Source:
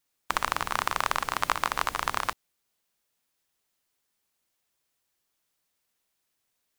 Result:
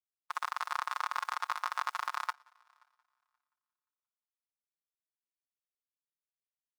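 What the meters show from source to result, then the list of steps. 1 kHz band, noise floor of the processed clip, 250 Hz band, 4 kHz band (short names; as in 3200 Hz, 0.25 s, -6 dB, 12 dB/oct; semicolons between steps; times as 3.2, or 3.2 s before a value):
-6.5 dB, under -85 dBFS, under -30 dB, -10.0 dB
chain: comb 5.6 ms, depth 56%; crossover distortion -37.5 dBFS; limiter -9.5 dBFS, peak gain reduction 4.5 dB; HPF 1100 Hz 12 dB/oct; hard clip -17 dBFS, distortion -18 dB; bell 1900 Hz -5.5 dB 2.5 oct; multi-head echo 0.176 s, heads first and third, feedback 45%, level -22 dB; spectral expander 1.5:1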